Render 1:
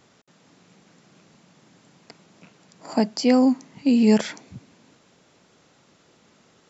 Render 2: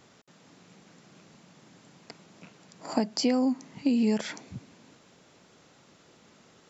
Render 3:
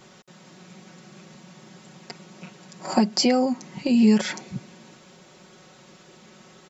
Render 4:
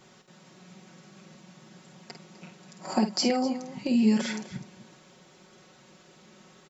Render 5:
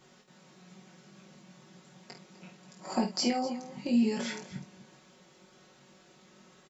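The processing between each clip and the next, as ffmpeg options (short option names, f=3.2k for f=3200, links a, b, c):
-af "acompressor=threshold=-22dB:ratio=6"
-af "aecho=1:1:5.4:0.79,volume=5.5dB"
-af "aecho=1:1:50|252:0.398|0.178,volume=-5.5dB"
-filter_complex "[0:a]asplit=2[a][b];[b]adelay=21,volume=-4.5dB[c];[a][c]amix=inputs=2:normalize=0,volume=-5dB"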